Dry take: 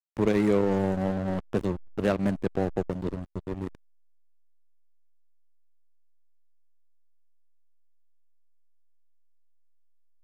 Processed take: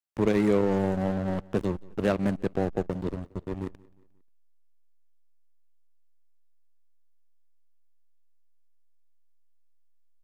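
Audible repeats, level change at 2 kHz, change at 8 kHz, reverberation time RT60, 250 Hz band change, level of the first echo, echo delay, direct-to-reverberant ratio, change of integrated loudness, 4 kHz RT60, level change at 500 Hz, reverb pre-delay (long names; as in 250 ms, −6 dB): 2, 0.0 dB, can't be measured, no reverb audible, 0.0 dB, −23.5 dB, 178 ms, no reverb audible, 0.0 dB, no reverb audible, 0.0 dB, no reverb audible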